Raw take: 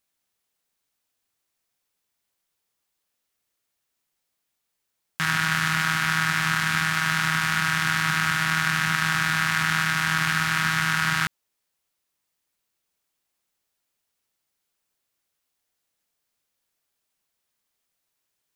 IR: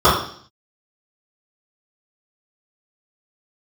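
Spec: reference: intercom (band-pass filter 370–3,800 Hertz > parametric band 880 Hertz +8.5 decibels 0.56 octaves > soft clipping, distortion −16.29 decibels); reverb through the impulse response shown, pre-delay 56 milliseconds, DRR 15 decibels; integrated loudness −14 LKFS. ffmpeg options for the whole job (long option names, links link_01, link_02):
-filter_complex "[0:a]asplit=2[link_01][link_02];[1:a]atrim=start_sample=2205,adelay=56[link_03];[link_02][link_03]afir=irnorm=-1:irlink=0,volume=-43dB[link_04];[link_01][link_04]amix=inputs=2:normalize=0,highpass=370,lowpass=3800,equalizer=frequency=880:width_type=o:width=0.56:gain=8.5,asoftclip=threshold=-13.5dB,volume=10dB"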